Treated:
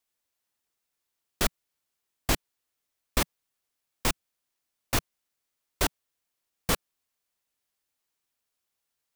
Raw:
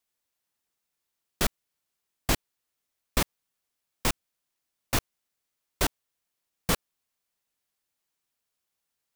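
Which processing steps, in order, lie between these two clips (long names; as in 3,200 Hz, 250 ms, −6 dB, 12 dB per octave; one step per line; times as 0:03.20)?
parametric band 170 Hz −3.5 dB 0.5 octaves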